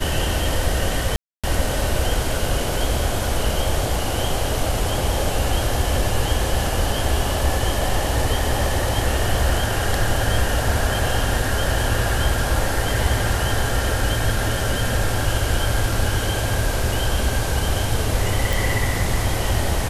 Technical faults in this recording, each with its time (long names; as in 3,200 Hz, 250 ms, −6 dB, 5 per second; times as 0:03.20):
0:01.16–0:01.44: drop-out 276 ms
0:18.53: click